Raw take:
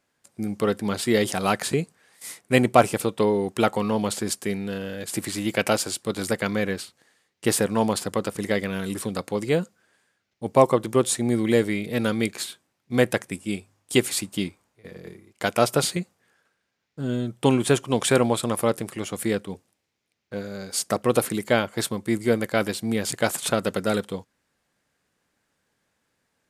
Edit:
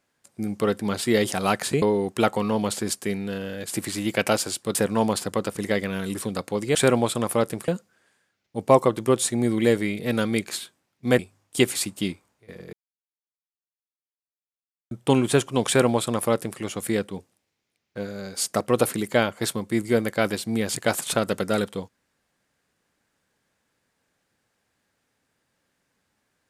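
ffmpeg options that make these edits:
ffmpeg -i in.wav -filter_complex "[0:a]asplit=8[link_01][link_02][link_03][link_04][link_05][link_06][link_07][link_08];[link_01]atrim=end=1.822[link_09];[link_02]atrim=start=3.218:end=6.152[link_10];[link_03]atrim=start=7.548:end=9.552[link_11];[link_04]atrim=start=18.028:end=18.962[link_12];[link_05]atrim=start=9.548:end=13.062[link_13];[link_06]atrim=start=13.548:end=15.09,asetpts=PTS-STARTPTS,afade=type=out:start_time=1.538:duration=0.004:curve=hsin[link_14];[link_07]atrim=start=15.09:end=17.27,asetpts=PTS-STARTPTS,volume=0[link_15];[link_08]atrim=start=17.27,asetpts=PTS-STARTPTS,afade=type=in:duration=0.004:curve=hsin[link_16];[link_09][link_10]acrossfade=duration=0.004:curve1=hsin:curve2=hsin[link_17];[link_17][link_11]acrossfade=duration=0.004:curve1=hsin:curve2=hsin[link_18];[link_18][link_12]acrossfade=duration=0.004:curve1=hsin:curve2=hsin[link_19];[link_19][link_13]acrossfade=duration=0.004:curve1=hsin:curve2=hsin[link_20];[link_14][link_15][link_16]concat=n=3:v=0:a=1[link_21];[link_20][link_21]acrossfade=duration=0.004:curve1=hsin:curve2=hsin" out.wav

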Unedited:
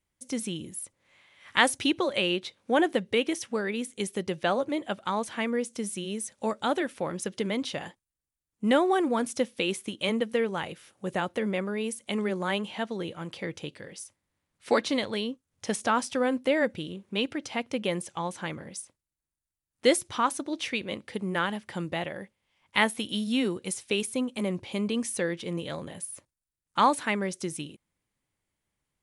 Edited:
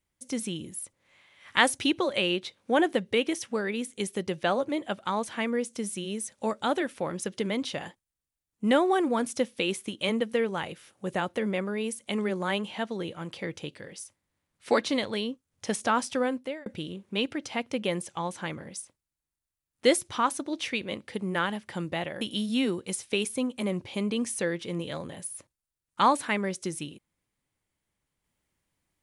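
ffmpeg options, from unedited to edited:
ffmpeg -i in.wav -filter_complex "[0:a]asplit=3[link_01][link_02][link_03];[link_01]atrim=end=16.66,asetpts=PTS-STARTPTS,afade=type=out:start_time=16.18:duration=0.48[link_04];[link_02]atrim=start=16.66:end=22.212,asetpts=PTS-STARTPTS,afade=type=in:duration=0.004:curve=hsin[link_05];[link_03]atrim=start=22.988[link_06];[link_04][link_05]concat=n=2:v=0:a=1[link_07];[link_07][link_06]acrossfade=duration=0.004:curve1=hsin:curve2=hsin" out.wav

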